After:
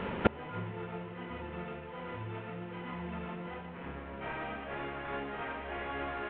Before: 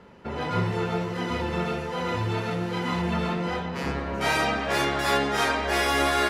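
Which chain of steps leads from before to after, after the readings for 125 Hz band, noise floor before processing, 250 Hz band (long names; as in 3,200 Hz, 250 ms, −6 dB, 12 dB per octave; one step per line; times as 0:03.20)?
−12.5 dB, −33 dBFS, −11.5 dB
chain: variable-slope delta modulation 16 kbit/s
gate with flip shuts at −24 dBFS, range −27 dB
level +14 dB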